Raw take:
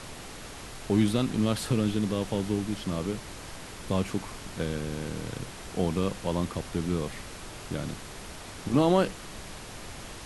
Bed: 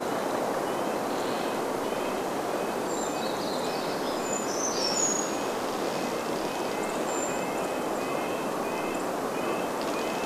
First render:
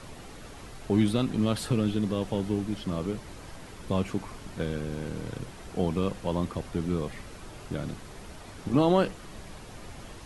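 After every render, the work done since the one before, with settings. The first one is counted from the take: denoiser 7 dB, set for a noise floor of -43 dBFS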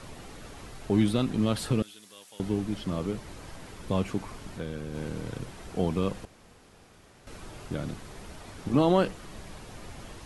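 1.82–2.4 differentiator; 4.52–4.95 compressor 1.5:1, threshold -38 dBFS; 6.25–7.27 room tone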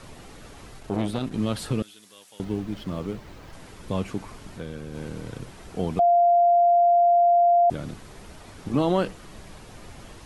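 0.79–1.33 core saturation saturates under 490 Hz; 2.44–3.53 median filter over 5 samples; 5.99–7.7 bleep 695 Hz -14.5 dBFS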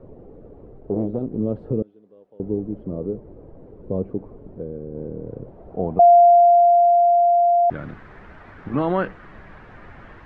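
low-pass sweep 470 Hz -> 1700 Hz, 5.19–7.61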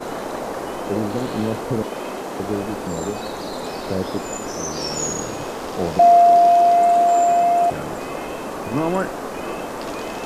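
add bed +1 dB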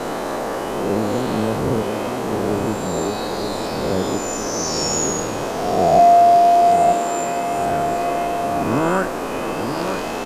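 spectral swells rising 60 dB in 1.41 s; outdoor echo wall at 160 m, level -7 dB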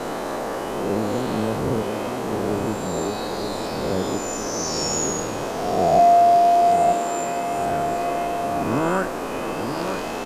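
gain -3 dB

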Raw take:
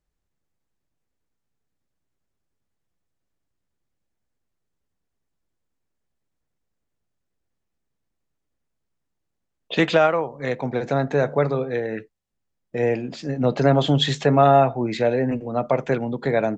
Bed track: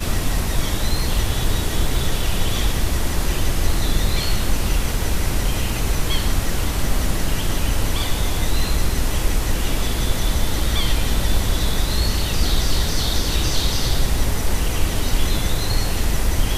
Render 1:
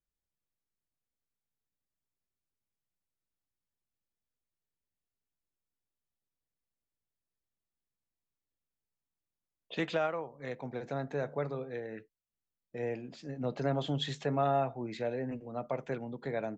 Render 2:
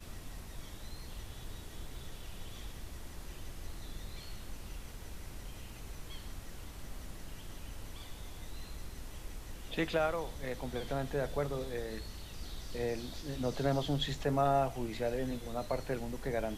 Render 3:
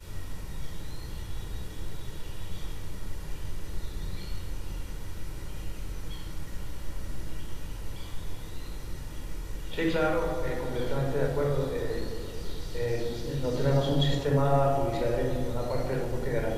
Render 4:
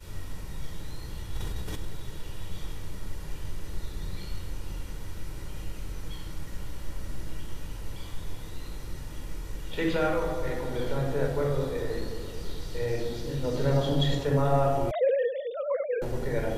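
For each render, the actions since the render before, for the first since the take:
gain -14.5 dB
add bed track -25.5 dB
dark delay 0.216 s, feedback 61%, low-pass 1400 Hz, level -9 dB; shoebox room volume 2700 m³, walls furnished, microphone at 4.6 m
1.25–1.85 sustainer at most 23 dB/s; 14.91–16.02 sine-wave speech

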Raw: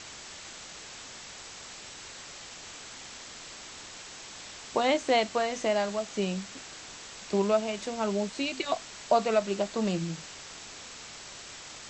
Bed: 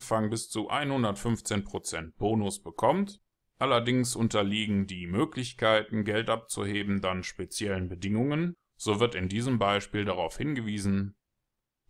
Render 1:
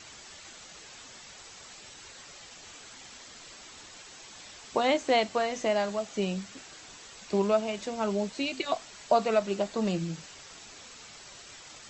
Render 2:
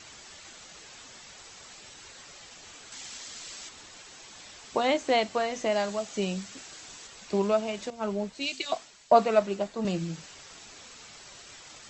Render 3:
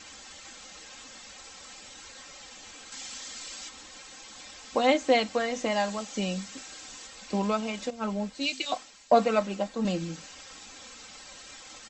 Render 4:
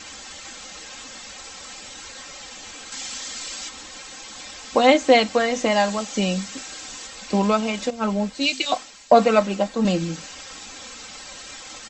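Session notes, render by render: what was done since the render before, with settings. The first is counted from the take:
denoiser 7 dB, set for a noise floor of -46 dBFS
2.92–3.69 high shelf 2500 Hz +8.5 dB; 5.72–7.07 high shelf 4600 Hz +5.5 dB; 7.9–9.85 three-band expander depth 100%
comb 3.8 ms, depth 64%
gain +8 dB; limiter -3 dBFS, peak gain reduction 2 dB

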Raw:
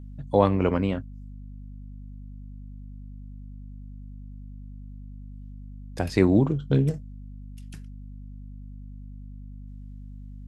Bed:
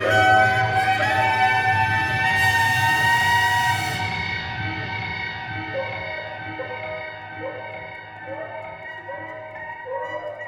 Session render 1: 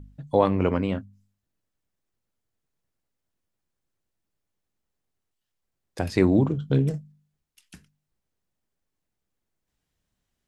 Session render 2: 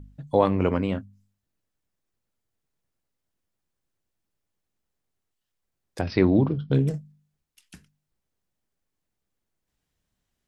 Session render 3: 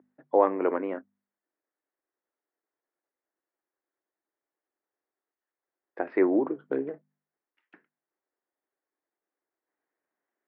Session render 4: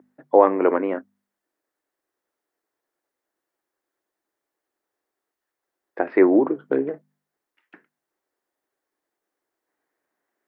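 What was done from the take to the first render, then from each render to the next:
de-hum 50 Hz, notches 5
6.01–6.72 careless resampling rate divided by 4×, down none, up filtered
Chebyshev band-pass 320–1900 Hz, order 3
gain +7.5 dB; limiter -2 dBFS, peak gain reduction 1.5 dB

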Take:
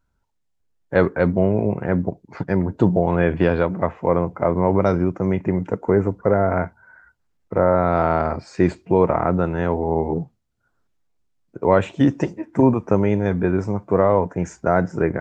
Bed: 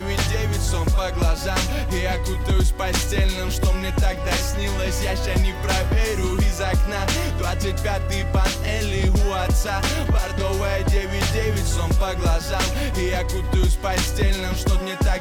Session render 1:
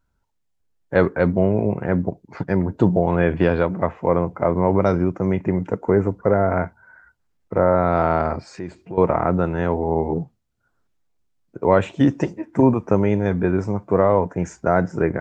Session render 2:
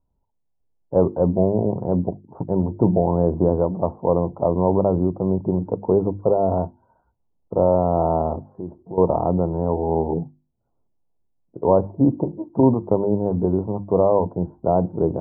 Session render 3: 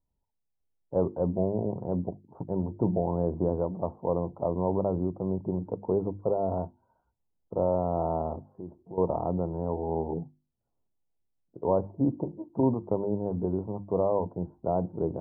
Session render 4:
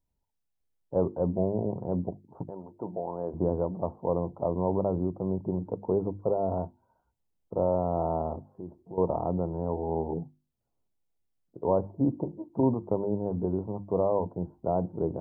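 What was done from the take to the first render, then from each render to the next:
8.5–8.98 compressor 2:1, threshold -38 dBFS
steep low-pass 990 Hz 48 dB/oct; notches 50/100/150/200/250/300/350 Hz
gain -9 dB
2.49–3.33 HPF 1300 Hz -> 560 Hz 6 dB/oct

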